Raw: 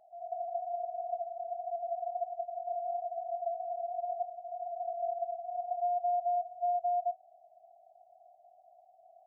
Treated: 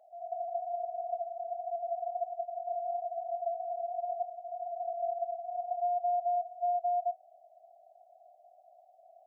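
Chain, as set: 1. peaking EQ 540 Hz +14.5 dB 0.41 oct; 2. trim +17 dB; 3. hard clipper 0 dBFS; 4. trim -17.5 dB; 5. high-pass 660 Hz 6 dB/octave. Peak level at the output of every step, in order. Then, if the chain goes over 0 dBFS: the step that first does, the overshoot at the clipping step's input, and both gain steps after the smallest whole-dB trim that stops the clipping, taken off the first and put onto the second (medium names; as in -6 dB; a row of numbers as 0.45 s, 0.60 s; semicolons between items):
-21.0 dBFS, -4.0 dBFS, -4.0 dBFS, -21.5 dBFS, -24.5 dBFS; nothing clips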